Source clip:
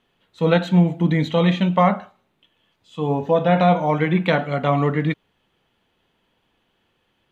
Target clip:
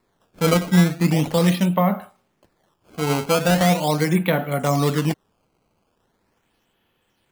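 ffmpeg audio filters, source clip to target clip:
-filter_complex "[0:a]acrossover=split=490[a][b];[b]acompressor=threshold=-20dB:ratio=6[c];[a][c]amix=inputs=2:normalize=0,acrusher=samples=14:mix=1:aa=0.000001:lfo=1:lforange=22.4:lforate=0.4"

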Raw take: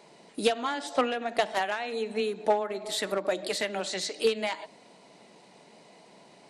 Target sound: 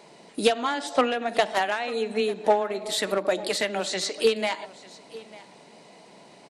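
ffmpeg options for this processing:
-af "aecho=1:1:897:0.1,volume=4dB"

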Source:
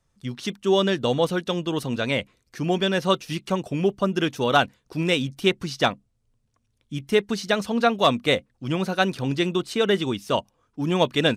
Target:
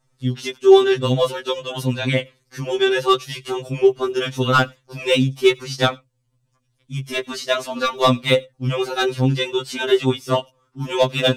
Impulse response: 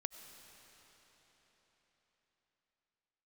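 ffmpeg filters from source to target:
-filter_complex "[0:a]asoftclip=type=hard:threshold=-11.5dB,asplit=2[a][b];[1:a]atrim=start_sample=2205,atrim=end_sample=4410[c];[b][c]afir=irnorm=-1:irlink=0,volume=2.5dB[d];[a][d]amix=inputs=2:normalize=0,afftfilt=real='re*2.45*eq(mod(b,6),0)':imag='im*2.45*eq(mod(b,6),0)':win_size=2048:overlap=0.75"

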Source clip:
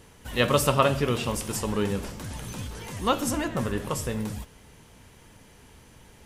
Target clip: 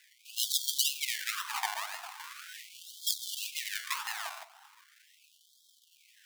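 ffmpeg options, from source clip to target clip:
-filter_complex "[0:a]asettb=1/sr,asplit=3[a][b][c];[a]atrim=end=1.694[d];[b]atrim=start=1.69:end=2.74,asetpts=PTS-STARTPTS,afade=t=in:d=0.004:c=qsin,afade=t=out:st=1.046:d=0.004:c=qsin,acrossover=split=500|1500[e][f][g];[e]acompressor=threshold=-31dB:ratio=4[h];[f]acompressor=threshold=-41dB:ratio=4[i];[g]acompressor=threshold=-42dB:ratio=4[j];[h][i][j]amix=inputs=3:normalize=0[k];[c]atrim=start=2.736[l];[d][k]acrossfade=d=0.004:c1=hsin:c2=qsin[m];[m][l]acrossfade=d=0.004:c1=qsin:c2=hsin,acrusher=samples=27:mix=1:aa=0.000001:lfo=1:lforange=16.2:lforate=1.9,afftfilt=real='re*gte(b*sr/1024,620*pow(3200/620,0.5+0.5*sin(2*PI*0.4*pts/sr)))':imag='im*gte(b*sr/1024,620*pow(3200/620,0.5+0.5*sin(2*PI*0.4*pts/sr)))':win_size=1024:overlap=0.75,volume=2.5dB"

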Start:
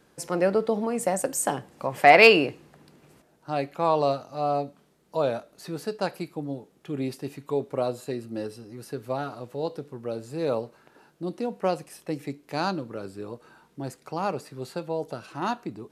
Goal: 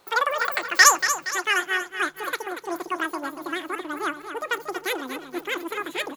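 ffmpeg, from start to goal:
-af "aecho=1:1:605|1210|1815|2420|3025:0.335|0.161|0.0772|0.037|0.0178,asetrate=113778,aresample=44100,asubboost=boost=9.5:cutoff=240,volume=1.5dB"

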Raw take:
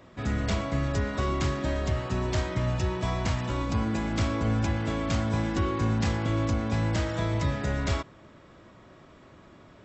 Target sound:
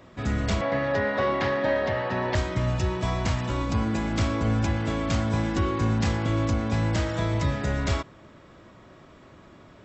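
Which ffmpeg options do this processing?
-filter_complex "[0:a]asettb=1/sr,asplit=3[a][b][c];[a]atrim=end=0.614[d];[b]atrim=start=0.61:end=2.35,asetpts=PTS-STARTPTS,afade=t=in:d=0.004:c=qsin,afade=t=out:st=1.736:d=0.004:c=qsin,highpass=f=110:w=0.5412,highpass=f=110:w=1.3066,equalizer=f=150:t=q:w=4:g=-9,equalizer=f=340:t=q:w=4:g=-4,equalizer=f=530:t=q:w=4:g=10,equalizer=f=850:t=q:w=4:g=9,equalizer=f=1.8k:t=q:w=4:g=10,lowpass=f=4.6k:w=0.5412,lowpass=f=4.6k:w=1.3066[e];[c]atrim=start=2.346[f];[d][e]acrossfade=d=0.004:c1=hsin:c2=qsin[g];[g][f]acrossfade=d=0.004:c1=qsin:c2=hsin,volume=2dB"

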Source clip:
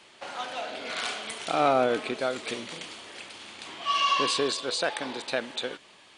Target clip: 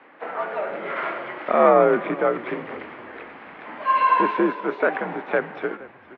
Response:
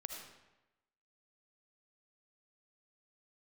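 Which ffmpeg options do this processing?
-filter_complex "[0:a]highpass=f=310:t=q:w=0.5412,highpass=f=310:t=q:w=1.307,lowpass=f=2.1k:t=q:w=0.5176,lowpass=f=2.1k:t=q:w=0.7071,lowpass=f=2.1k:t=q:w=1.932,afreqshift=-77,asplit=4[a][b][c][d];[b]adelay=469,afreqshift=-41,volume=-20dB[e];[c]adelay=938,afreqshift=-82,volume=-27.7dB[f];[d]adelay=1407,afreqshift=-123,volume=-35.5dB[g];[a][e][f][g]amix=inputs=4:normalize=0,asplit=2[h][i];[i]asetrate=66075,aresample=44100,atempo=0.66742,volume=-16dB[j];[h][j]amix=inputs=2:normalize=0,volume=8dB"

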